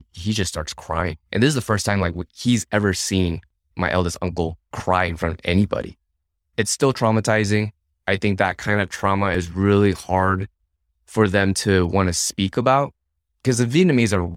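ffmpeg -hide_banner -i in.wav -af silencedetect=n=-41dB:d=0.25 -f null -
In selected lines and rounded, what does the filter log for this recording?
silence_start: 3.43
silence_end: 3.77 | silence_duration: 0.34
silence_start: 5.92
silence_end: 6.58 | silence_duration: 0.66
silence_start: 7.70
silence_end: 8.07 | silence_duration: 0.37
silence_start: 10.46
silence_end: 11.09 | silence_duration: 0.62
silence_start: 12.90
silence_end: 13.45 | silence_duration: 0.55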